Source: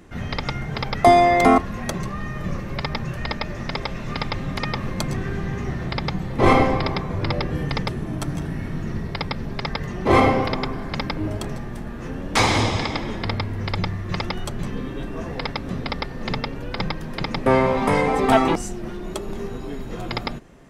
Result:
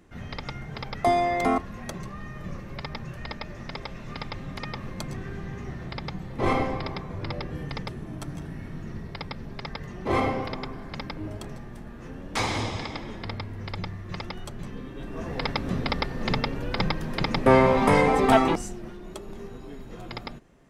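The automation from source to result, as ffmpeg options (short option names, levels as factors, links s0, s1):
-af "afade=t=in:st=14.94:d=0.63:silence=0.354813,afade=t=out:st=18.03:d=0.93:silence=0.334965"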